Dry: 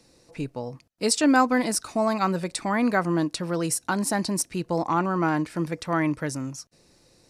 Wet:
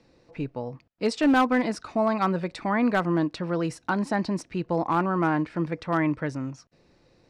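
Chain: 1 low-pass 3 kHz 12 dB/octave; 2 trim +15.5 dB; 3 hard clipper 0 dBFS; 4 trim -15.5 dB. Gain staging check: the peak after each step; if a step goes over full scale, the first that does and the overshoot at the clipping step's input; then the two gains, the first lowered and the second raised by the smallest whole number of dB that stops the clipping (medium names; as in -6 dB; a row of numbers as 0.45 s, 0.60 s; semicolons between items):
-8.5 dBFS, +7.0 dBFS, 0.0 dBFS, -15.5 dBFS; step 2, 7.0 dB; step 2 +8.5 dB, step 4 -8.5 dB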